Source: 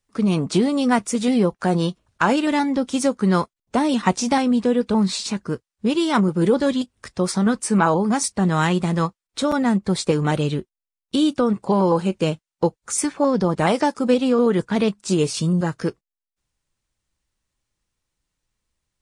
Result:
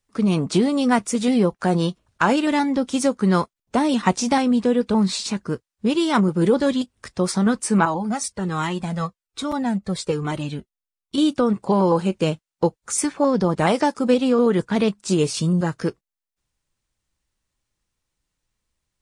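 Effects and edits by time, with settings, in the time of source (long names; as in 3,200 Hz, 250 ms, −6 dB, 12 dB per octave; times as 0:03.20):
0:07.85–0:11.18: flanger whose copies keep moving one way falling 1.2 Hz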